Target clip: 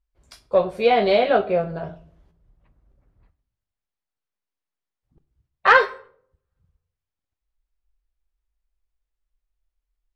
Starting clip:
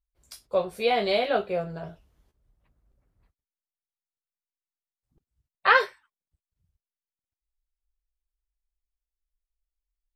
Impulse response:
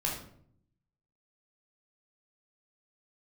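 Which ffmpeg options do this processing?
-filter_complex "[0:a]aemphasis=mode=reproduction:type=75fm,acontrast=68,asplit=2[a][b];[1:a]atrim=start_sample=2205,adelay=26[c];[b][c]afir=irnorm=-1:irlink=0,volume=-21.5dB[d];[a][d]amix=inputs=2:normalize=0"

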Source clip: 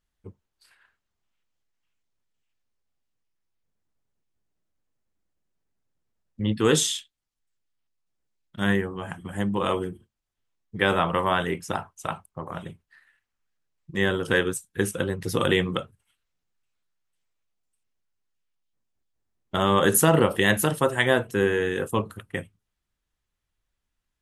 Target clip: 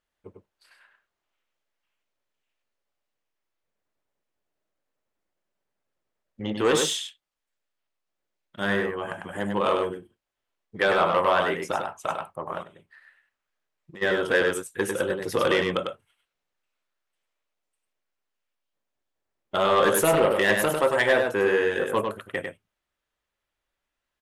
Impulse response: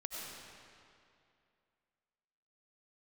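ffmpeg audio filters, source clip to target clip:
-filter_complex "[0:a]equalizer=f=590:w=5.3:g=4.5,asoftclip=type=tanh:threshold=-15dB,bass=f=250:g=-13,treble=f=4k:g=-7,aecho=1:1:99:0.562,asplit=3[a][b][c];[a]afade=t=out:st=12.62:d=0.02[d];[b]acompressor=threshold=-45dB:ratio=12,afade=t=in:st=12.62:d=0.02,afade=t=out:st=14.01:d=0.02[e];[c]afade=t=in:st=14.01:d=0.02[f];[d][e][f]amix=inputs=3:normalize=0,volume=3dB"

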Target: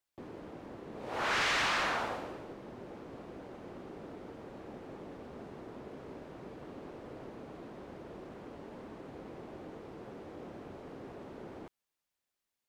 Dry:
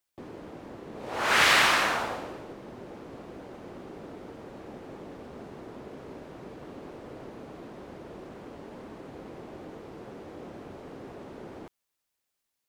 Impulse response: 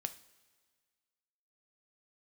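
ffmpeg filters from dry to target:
-filter_complex "[0:a]highshelf=f=5.3k:g=-4.5,asoftclip=type=hard:threshold=-24.5dB,acrossover=split=7400[a][b];[b]acompressor=threshold=-58dB:ratio=4:attack=1:release=60[c];[a][c]amix=inputs=2:normalize=0,volume=-3.5dB"

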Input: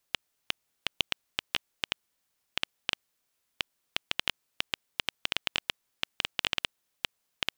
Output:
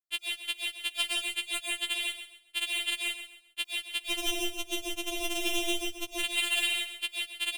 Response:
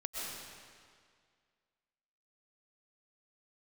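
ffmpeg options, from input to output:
-filter_complex "[0:a]agate=range=-33dB:threshold=-53dB:ratio=3:detection=peak,alimiter=limit=-12dB:level=0:latency=1:release=257,aeval=exprs='0.355*sin(PI/2*2.51*val(0)/0.355)':c=same,aeval=exprs='0.376*(cos(1*acos(clip(val(0)/0.376,-1,1)))-cos(1*PI/2))+0.015*(cos(2*acos(clip(val(0)/0.376,-1,1)))-cos(2*PI/2))+0.00473*(cos(4*acos(clip(val(0)/0.376,-1,1)))-cos(4*PI/2))':c=same,asettb=1/sr,asplit=3[a][b][c];[a]atrim=end=4.044[d];[b]atrim=start=4.04:end=6.14,asetpts=PTS-STARTPTS,afade=t=in:d=0.004:c=qsin,afade=t=out:st=2.096:d=0.004:c=qsin,aeval=exprs='max(val(0),0)':c=same[e];[c]atrim=start=6.136[f];[d][e]acrossfade=d=0.004:c1=hsin:c2=qsin[g];[g][f]acrossfade=d=0.004:c1=qsin:c2=hsin,aecho=1:1:133|266|399:0.299|0.0925|0.0287[h];[1:a]atrim=start_sample=2205,afade=t=out:st=0.24:d=0.01,atrim=end_sample=11025[i];[h][i]afir=irnorm=-1:irlink=0,afftfilt=real='re*4*eq(mod(b,16),0)':imag='im*4*eq(mod(b,16),0)':win_size=2048:overlap=0.75,volume=5dB"

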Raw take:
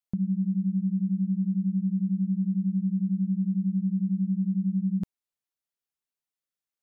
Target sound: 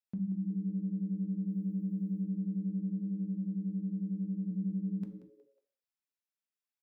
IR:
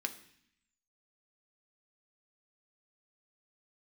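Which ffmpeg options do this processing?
-filter_complex "[0:a]asettb=1/sr,asplit=3[a][b][c];[a]atrim=end=1.494[d];[b]atrim=start=1.49:end=2.24,asetpts=PTS-STARTPTS,afade=t=in:d=0.004:c=qsin,afade=t=out:st=0.746:d=0.004:c=qsin,aemphasis=mode=production:type=75kf[e];[c]atrim=start=2.236[f];[d][e]acrossfade=d=0.004:c1=hsin:c2=qsin[g];[g][f]acrossfade=d=0.004:c1=qsin:c2=hsin,asplit=3[h][i][j];[h]afade=t=out:st=2.99:d=0.02[k];[i]highpass=170,afade=t=in:st=2.99:d=0.02,afade=t=out:st=4.5:d=0.02[l];[j]afade=t=in:st=4.5:d=0.02[m];[k][l][m]amix=inputs=3:normalize=0,acompressor=threshold=-29dB:ratio=2.5,asplit=4[n][o][p][q];[o]adelay=182,afreqshift=120,volume=-15dB[r];[p]adelay=364,afreqshift=240,volume=-24.9dB[s];[q]adelay=546,afreqshift=360,volume=-34.8dB[t];[n][r][s][t]amix=inputs=4:normalize=0[u];[1:a]atrim=start_sample=2205,afade=t=out:st=0.31:d=0.01,atrim=end_sample=14112[v];[u][v]afir=irnorm=-1:irlink=0,volume=-6.5dB"

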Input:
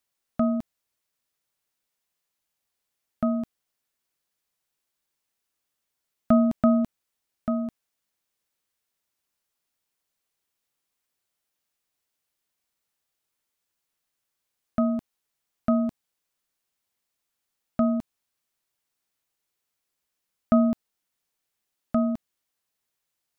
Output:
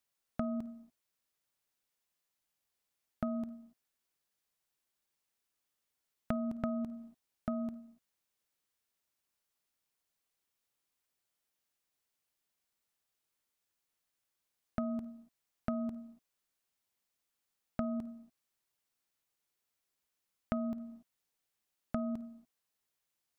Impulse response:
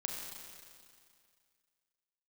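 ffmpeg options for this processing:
-filter_complex "[0:a]asplit=2[a][b];[1:a]atrim=start_sample=2205,afade=t=out:st=0.29:d=0.01,atrim=end_sample=13230,adelay=53[c];[b][c]afir=irnorm=-1:irlink=0,volume=-18dB[d];[a][d]amix=inputs=2:normalize=0,acompressor=threshold=-28dB:ratio=10,volume=-4dB"

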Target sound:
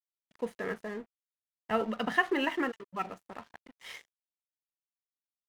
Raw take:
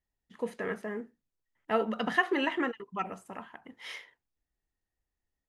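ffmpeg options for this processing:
-filter_complex "[0:a]asettb=1/sr,asplit=3[a][b][c];[a]atrim=end=0.734[d];[b]atrim=start=0.73:end=1.81,asetpts=PTS-STARTPTS,afade=t=in:d=0.004:c=qsin,afade=t=out:st=1.076:d=0.004:c=qsin,asubboost=boost=12:cutoff=140[e];[c]atrim=start=1.806[f];[d][e]acrossfade=d=0.004:c1=hsin:c2=qsin[g];[g][f]acrossfade=d=0.004:c1=qsin:c2=hsin,aeval=exprs='sgn(val(0))*max(abs(val(0))-0.00335,0)':c=same"

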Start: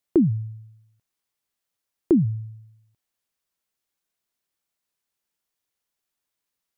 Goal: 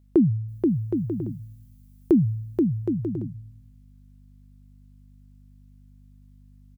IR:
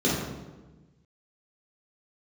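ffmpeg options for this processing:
-filter_complex "[0:a]asettb=1/sr,asplit=3[a][b][c];[a]atrim=end=0.484[d];[b]atrim=start=0.48:end=2.19,asetpts=PTS-STARTPTS,afade=t=in:d=0.004:c=qsin,afade=t=out:st=1.706:d=0.004:c=qsin,aemphasis=mode=production:type=50kf[e];[c]atrim=start=2.186[f];[d][e]acrossfade=d=0.004:c1=hsin:c2=qsin[g];[g][f]acrossfade=d=0.004:c1=qsin:c2=hsin,aeval=exprs='val(0)+0.00178*(sin(2*PI*50*n/s)+sin(2*PI*2*50*n/s)/2+sin(2*PI*3*50*n/s)/3+sin(2*PI*4*50*n/s)/4+sin(2*PI*5*50*n/s)/5)':c=same,aecho=1:1:480|768|940.8|1044|1107:0.631|0.398|0.251|0.158|0.1"

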